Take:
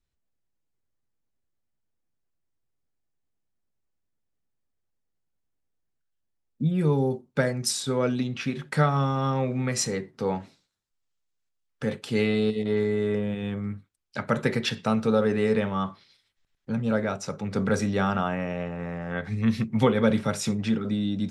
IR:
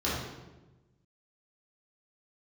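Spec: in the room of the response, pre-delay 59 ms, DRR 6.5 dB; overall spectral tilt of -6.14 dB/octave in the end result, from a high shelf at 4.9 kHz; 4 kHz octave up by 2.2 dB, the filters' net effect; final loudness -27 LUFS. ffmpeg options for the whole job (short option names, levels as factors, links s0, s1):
-filter_complex "[0:a]equalizer=f=4000:t=o:g=7,highshelf=f=4900:g=-8.5,asplit=2[s0][s1];[1:a]atrim=start_sample=2205,adelay=59[s2];[s1][s2]afir=irnorm=-1:irlink=0,volume=0.15[s3];[s0][s3]amix=inputs=2:normalize=0,volume=0.75"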